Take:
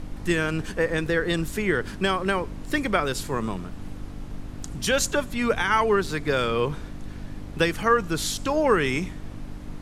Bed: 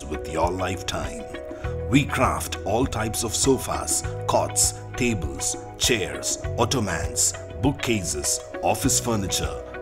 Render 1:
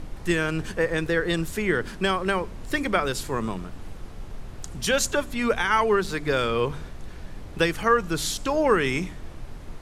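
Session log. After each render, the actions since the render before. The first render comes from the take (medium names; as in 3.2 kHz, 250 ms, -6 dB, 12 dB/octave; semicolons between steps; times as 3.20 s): de-hum 50 Hz, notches 6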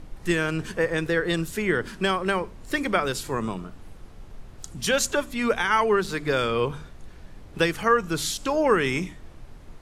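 noise print and reduce 6 dB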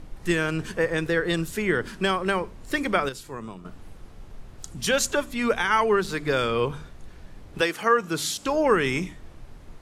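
3.09–3.65 s: gain -8.5 dB; 7.60–8.44 s: high-pass 350 Hz -> 96 Hz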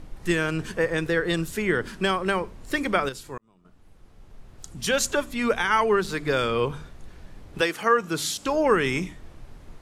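3.38–5.07 s: fade in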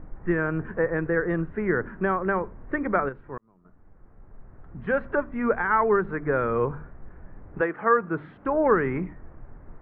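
steep low-pass 1.8 kHz 36 dB/octave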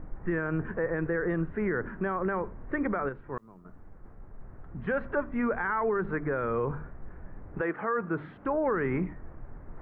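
peak limiter -20.5 dBFS, peak gain reduction 11.5 dB; reverse; upward compressor, threshold -39 dBFS; reverse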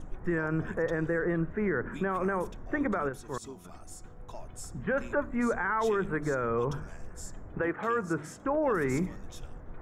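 add bed -25.5 dB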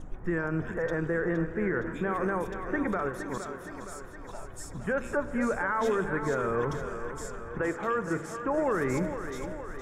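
on a send: thinning echo 466 ms, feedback 63%, high-pass 180 Hz, level -9 dB; on the sum: spring tank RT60 3.8 s, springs 36/40 ms, chirp 25 ms, DRR 13 dB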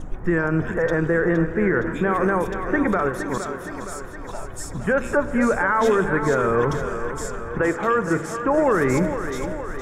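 trim +9 dB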